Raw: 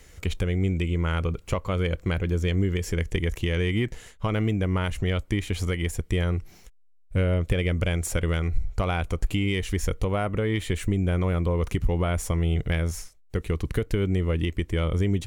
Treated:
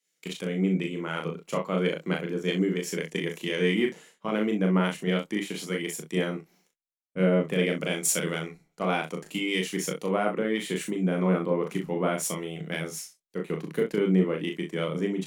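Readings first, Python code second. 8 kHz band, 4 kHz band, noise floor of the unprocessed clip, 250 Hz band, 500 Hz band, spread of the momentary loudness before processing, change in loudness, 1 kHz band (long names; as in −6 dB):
+5.0 dB, +1.0 dB, −53 dBFS, +1.5 dB, +2.0 dB, 4 LU, −1.5 dB, +1.0 dB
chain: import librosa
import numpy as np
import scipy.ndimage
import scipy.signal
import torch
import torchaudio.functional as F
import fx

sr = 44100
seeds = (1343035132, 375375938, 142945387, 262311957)

y = scipy.signal.sosfilt(scipy.signal.ellip(4, 1.0, 40, 160.0, 'highpass', fs=sr, output='sos'), x)
y = fx.room_early_taps(y, sr, ms=(27, 38, 64), db=(-10.5, -4.0, -11.0))
y = fx.band_widen(y, sr, depth_pct=100)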